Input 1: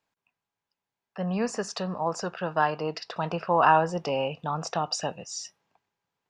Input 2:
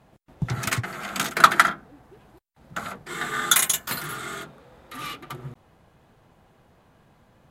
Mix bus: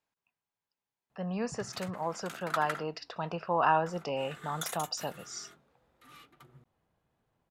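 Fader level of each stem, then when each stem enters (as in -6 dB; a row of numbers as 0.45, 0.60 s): -6.0, -20.0 dB; 0.00, 1.10 s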